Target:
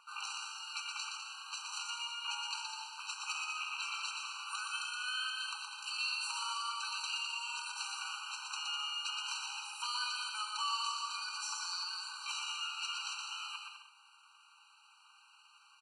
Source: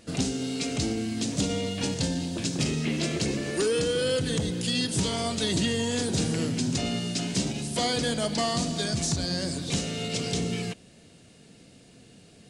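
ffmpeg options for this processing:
-filter_complex "[0:a]bass=f=250:g=-1,treble=f=4k:g=-11,atempo=0.79,equalizer=f=1.2k:t=o:w=0.44:g=8.5,acrossover=split=380|1700[a][b][c];[b]acompressor=threshold=-41dB:ratio=6[d];[a][d][c]amix=inputs=3:normalize=0,aecho=1:1:120|204|262.8|304|332.8:0.631|0.398|0.251|0.158|0.1,afftfilt=real='re*eq(mod(floor(b*sr/1024/780),2),1)':imag='im*eq(mod(floor(b*sr/1024/780),2),1)':win_size=1024:overlap=0.75"

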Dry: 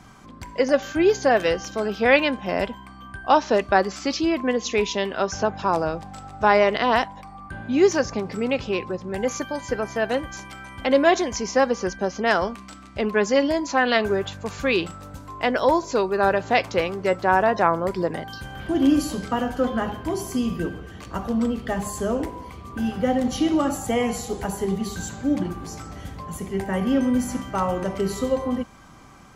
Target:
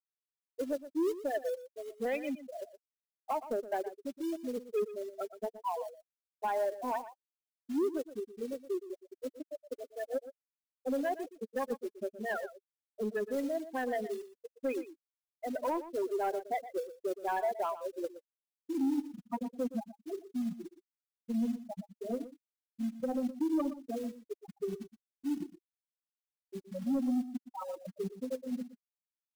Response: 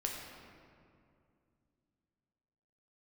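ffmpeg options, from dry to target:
-af "highpass=f=170:w=0.5412,highpass=f=170:w=1.3066,afftfilt=real='re*gte(hypot(re,im),0.447)':imag='im*gte(hypot(re,im),0.447)':win_size=1024:overlap=0.75,acrusher=bits=5:mode=log:mix=0:aa=0.000001,flanger=delay=2.5:depth=2.6:regen=28:speed=0.12:shape=triangular,alimiter=limit=-16dB:level=0:latency=1:release=142,asoftclip=type=tanh:threshold=-18.5dB,aecho=1:1:119:0.2,volume=-6dB"

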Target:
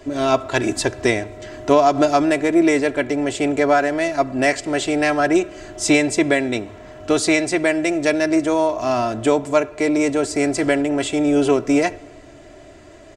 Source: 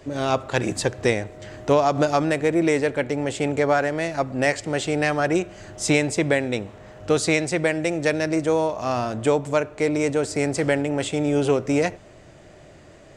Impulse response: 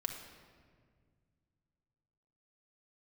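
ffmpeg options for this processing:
-filter_complex "[0:a]bandreject=f=50:t=h:w=6,bandreject=f=100:t=h:w=6,aecho=1:1:3:0.64,asplit=2[a][b];[1:a]atrim=start_sample=2205[c];[b][c]afir=irnorm=-1:irlink=0,volume=-17.5dB[d];[a][d]amix=inputs=2:normalize=0,volume=1.5dB"

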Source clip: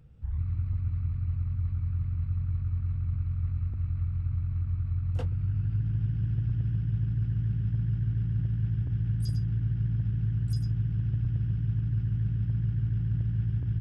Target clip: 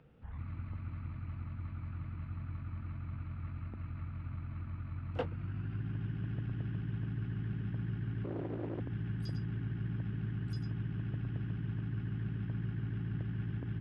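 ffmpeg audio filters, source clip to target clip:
-filter_complex "[0:a]asettb=1/sr,asplit=3[a][b][c];[a]atrim=end=8.244[d];[b]atrim=start=8.24:end=8.8,asetpts=PTS-STARTPTS,afade=t=in:d=0.004:c=qsin,afade=t=out:st=0.556:d=0.004:c=qsin,asoftclip=type=hard:threshold=-31dB[e];[c]atrim=start=8.796[f];[d][e]acrossfade=d=0.004:c1=hsin:c2=qsin[g];[g][f]acrossfade=d=0.004:c1=qsin:c2=hsin,acrossover=split=210 3600:gain=0.1 1 0.0708[h][i][j];[h][i][j]amix=inputs=3:normalize=0,volume=5.5dB"

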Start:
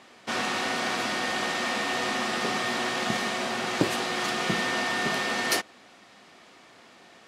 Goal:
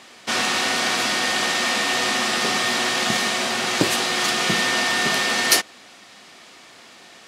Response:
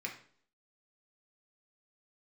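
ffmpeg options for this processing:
-af "highshelf=f=2.4k:g=9,volume=3.5dB"

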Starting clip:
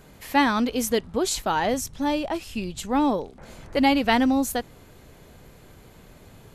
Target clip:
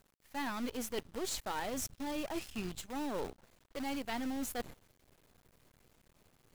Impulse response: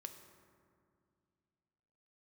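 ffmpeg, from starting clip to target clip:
-af "agate=range=-15dB:threshold=-39dB:ratio=16:detection=peak,areverse,acompressor=threshold=-36dB:ratio=6,areverse,aeval=exprs='0.0501*(cos(1*acos(clip(val(0)/0.0501,-1,1)))-cos(1*PI/2))+0.0126*(cos(2*acos(clip(val(0)/0.0501,-1,1)))-cos(2*PI/2))+0.000355*(cos(3*acos(clip(val(0)/0.0501,-1,1)))-cos(3*PI/2))+0.00282*(cos(6*acos(clip(val(0)/0.0501,-1,1)))-cos(6*PI/2))':c=same,acrusher=bits=8:dc=4:mix=0:aa=0.000001,volume=-1dB"

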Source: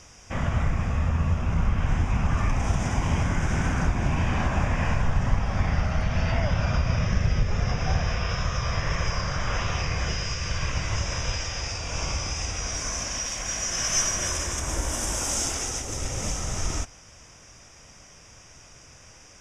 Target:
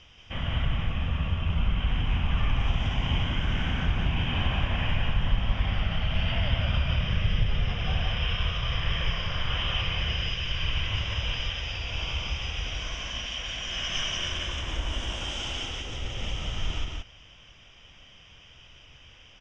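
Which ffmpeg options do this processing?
-filter_complex "[0:a]lowpass=f=3.1k:t=q:w=9.8,lowshelf=f=98:g=7.5,asplit=2[a][b];[b]aecho=0:1:177:0.708[c];[a][c]amix=inputs=2:normalize=0,volume=-8.5dB"

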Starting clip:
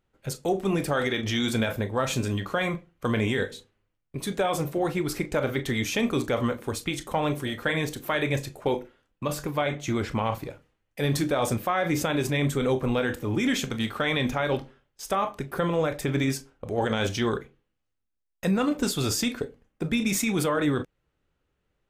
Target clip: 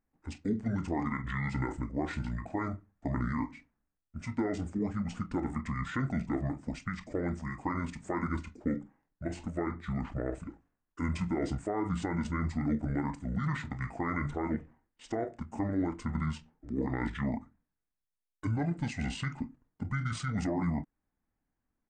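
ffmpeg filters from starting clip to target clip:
-af "asetrate=25476,aresample=44100,atempo=1.73107,equalizer=f=250:t=o:w=1:g=4,equalizer=f=2k:t=o:w=1:g=4,equalizer=f=4k:t=o:w=1:g=-10,volume=-8.5dB"

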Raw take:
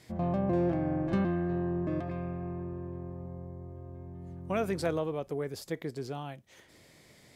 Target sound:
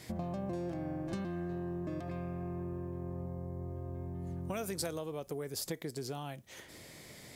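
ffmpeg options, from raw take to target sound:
-filter_complex "[0:a]acrossover=split=4500[a][b];[a]acompressor=threshold=-42dB:ratio=6[c];[c][b]amix=inputs=2:normalize=0,highshelf=f=8.8k:g=6.5,volume=5.5dB"

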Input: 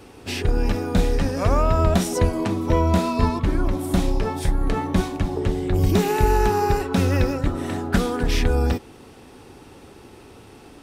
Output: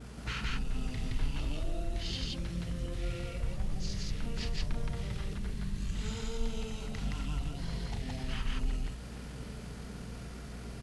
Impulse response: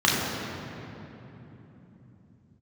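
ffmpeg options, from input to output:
-filter_complex "[0:a]bandreject=f=60:t=h:w=6,bandreject=f=120:t=h:w=6,adynamicequalizer=threshold=0.00501:dfrequency=6800:dqfactor=1.1:tfrequency=6800:tqfactor=1.1:attack=5:release=100:ratio=0.375:range=2:mode=boostabove:tftype=bell,acompressor=threshold=-22dB:ratio=8,alimiter=limit=-21.5dB:level=0:latency=1:release=326,acrossover=split=180|3000[a][b][c];[b]acompressor=threshold=-41dB:ratio=6[d];[a][d][c]amix=inputs=3:normalize=0,acrusher=bits=8:mix=0:aa=0.000001,asetrate=23361,aresample=44100,atempo=1.88775,aeval=exprs='val(0)+0.00398*(sin(2*PI*60*n/s)+sin(2*PI*2*60*n/s)/2+sin(2*PI*3*60*n/s)/3+sin(2*PI*4*60*n/s)/4+sin(2*PI*5*60*n/s)/5)':c=same,asplit=2[e][f];[f]aecho=0:1:34.99|169.1:0.447|1[g];[e][g]amix=inputs=2:normalize=0,volume=-3dB"

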